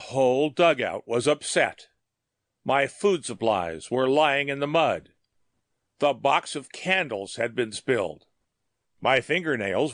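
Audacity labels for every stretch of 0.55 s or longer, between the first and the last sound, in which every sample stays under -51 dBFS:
1.860000	2.660000	silence
5.110000	6.010000	silence
8.230000	9.020000	silence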